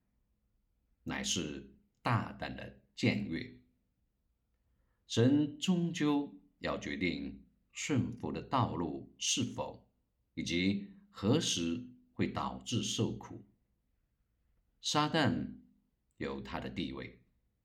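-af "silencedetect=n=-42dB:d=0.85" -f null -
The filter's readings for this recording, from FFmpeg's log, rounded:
silence_start: 0.00
silence_end: 1.07 | silence_duration: 1.07
silence_start: 3.49
silence_end: 5.11 | silence_duration: 1.62
silence_start: 13.37
silence_end: 14.85 | silence_duration: 1.48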